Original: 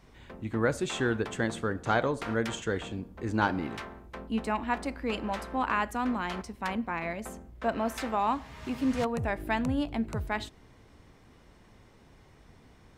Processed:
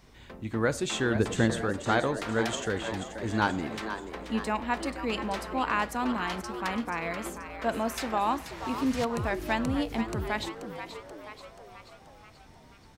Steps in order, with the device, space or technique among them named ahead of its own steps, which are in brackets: 1.15–1.62 low shelf 380 Hz +9 dB; presence and air boost (bell 4800 Hz +4.5 dB 1.4 oct; high shelf 11000 Hz +7 dB); frequency-shifting echo 0.482 s, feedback 56%, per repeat +110 Hz, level -10 dB

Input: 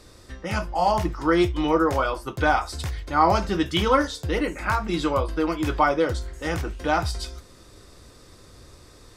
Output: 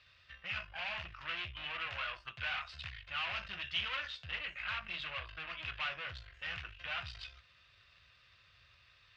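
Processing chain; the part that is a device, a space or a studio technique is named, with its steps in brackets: scooped metal amplifier (tube stage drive 27 dB, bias 0.7; speaker cabinet 100–3600 Hz, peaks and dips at 190 Hz -3 dB, 290 Hz -4 dB, 450 Hz -9 dB, 860 Hz -8 dB, 1700 Hz +3 dB, 2700 Hz +10 dB; passive tone stack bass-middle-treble 10-0-10); gain -1 dB

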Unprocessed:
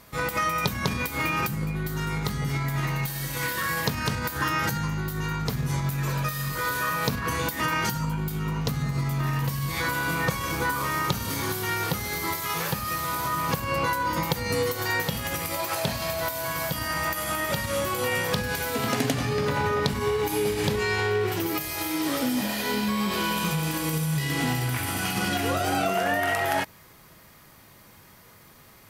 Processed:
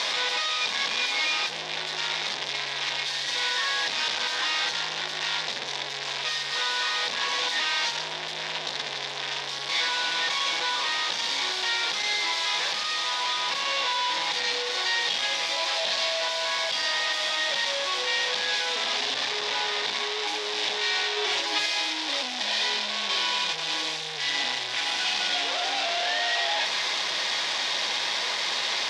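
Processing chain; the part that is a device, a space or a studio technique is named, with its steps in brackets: home computer beeper (infinite clipping; speaker cabinet 780–5500 Hz, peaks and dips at 1300 Hz -10 dB, 3600 Hz +8 dB, 5200 Hz +3 dB); 21.16–21.66 comb 7.2 ms, depth 86%; gain +3.5 dB

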